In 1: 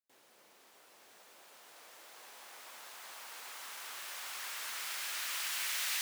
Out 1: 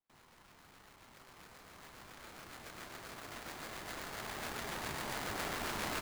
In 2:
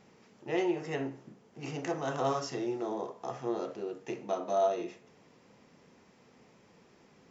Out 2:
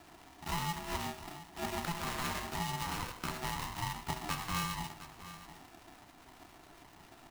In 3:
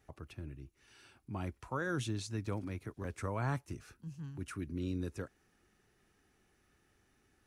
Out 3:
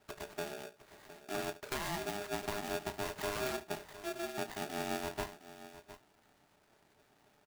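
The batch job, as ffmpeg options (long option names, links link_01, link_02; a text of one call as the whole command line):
ffmpeg -i in.wav -filter_complex "[0:a]lowpass=frequency=2400:poles=1,acrusher=samples=16:mix=1:aa=0.000001,acompressor=threshold=-39dB:ratio=6,highpass=frequency=64:width=0.5412,highpass=frequency=64:width=1.3066,acrusher=bits=3:mode=log:mix=0:aa=0.000001,acrossover=split=610[link_01][link_02];[link_01]aeval=exprs='val(0)*(1-0.5/2+0.5/2*cos(2*PI*7.3*n/s))':channel_layout=same[link_03];[link_02]aeval=exprs='val(0)*(1-0.5/2-0.5/2*cos(2*PI*7.3*n/s))':channel_layout=same[link_04];[link_03][link_04]amix=inputs=2:normalize=0,asplit=2[link_05][link_06];[link_06]adelay=32,volume=-12dB[link_07];[link_05][link_07]amix=inputs=2:normalize=0,asplit=2[link_08][link_09];[link_09]aecho=0:1:71|710:0.158|0.188[link_10];[link_08][link_10]amix=inputs=2:normalize=0,aeval=exprs='val(0)*sgn(sin(2*PI*510*n/s))':channel_layout=same,volume=6.5dB" out.wav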